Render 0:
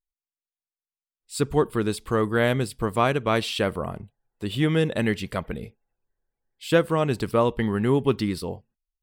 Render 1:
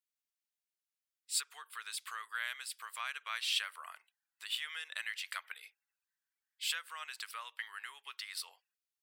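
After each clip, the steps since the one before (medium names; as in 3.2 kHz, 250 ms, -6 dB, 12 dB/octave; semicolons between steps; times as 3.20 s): compression 6:1, threshold -28 dBFS, peak gain reduction 13.5 dB; high-pass 1.4 kHz 24 dB/octave; trim +1 dB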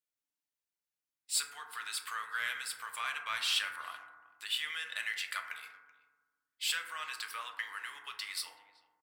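waveshaping leveller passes 1; speakerphone echo 380 ms, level -22 dB; FDN reverb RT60 1.3 s, low-frequency decay 1.45×, high-frequency decay 0.25×, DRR 2.5 dB; trim -1 dB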